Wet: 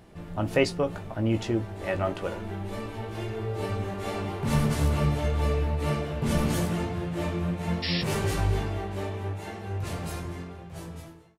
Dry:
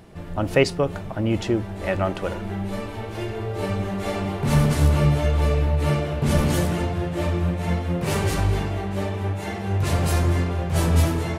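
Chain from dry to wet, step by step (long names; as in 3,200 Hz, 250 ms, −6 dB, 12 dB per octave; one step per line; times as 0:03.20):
fade-out on the ending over 2.67 s
sound drawn into the spectrogram noise, 0:07.82–0:08.02, 1,700–5,600 Hz −26 dBFS
double-tracking delay 18 ms −7 dB
level −5.5 dB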